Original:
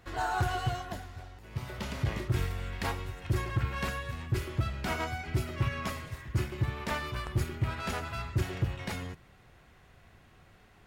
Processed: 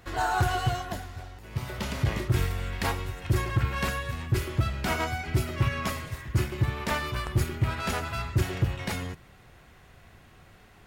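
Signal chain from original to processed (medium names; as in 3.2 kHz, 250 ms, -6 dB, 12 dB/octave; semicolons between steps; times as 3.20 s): treble shelf 7.5 kHz +4 dB; trim +4.5 dB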